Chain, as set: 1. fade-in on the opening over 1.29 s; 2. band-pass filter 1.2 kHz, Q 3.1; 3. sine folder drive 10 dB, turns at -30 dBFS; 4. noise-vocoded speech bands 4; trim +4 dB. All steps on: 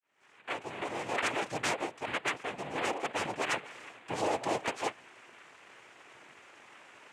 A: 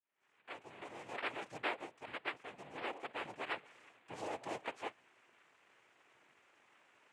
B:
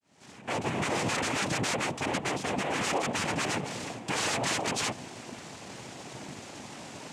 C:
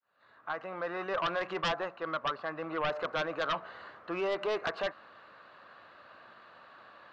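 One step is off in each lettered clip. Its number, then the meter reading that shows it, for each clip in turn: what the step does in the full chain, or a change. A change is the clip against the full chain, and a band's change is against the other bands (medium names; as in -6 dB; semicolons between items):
3, distortion -4 dB; 2, 125 Hz band +7.0 dB; 4, crest factor change -8.5 dB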